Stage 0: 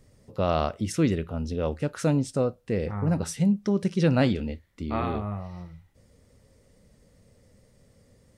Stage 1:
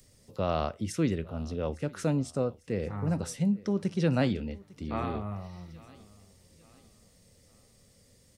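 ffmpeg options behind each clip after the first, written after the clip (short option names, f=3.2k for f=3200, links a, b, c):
-filter_complex "[0:a]aecho=1:1:852|1704|2556:0.0708|0.0283|0.0113,acrossover=split=140|890|2700[a][b][c][d];[d]acompressor=mode=upward:threshold=-50dB:ratio=2.5[e];[a][b][c][e]amix=inputs=4:normalize=0,volume=-4.5dB"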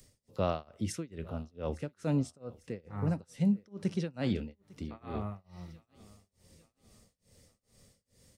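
-af "tremolo=f=2.3:d=0.98"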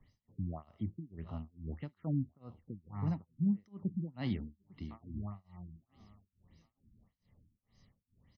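-af "aecho=1:1:1:0.65,afftfilt=real='re*lt(b*sr/1024,320*pow(6700/320,0.5+0.5*sin(2*PI*1.7*pts/sr)))':imag='im*lt(b*sr/1024,320*pow(6700/320,0.5+0.5*sin(2*PI*1.7*pts/sr)))':win_size=1024:overlap=0.75,volume=-6dB"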